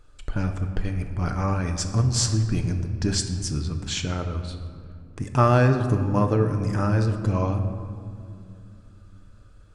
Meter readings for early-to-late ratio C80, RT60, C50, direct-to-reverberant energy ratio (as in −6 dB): 9.5 dB, 2.4 s, 8.0 dB, 5.0 dB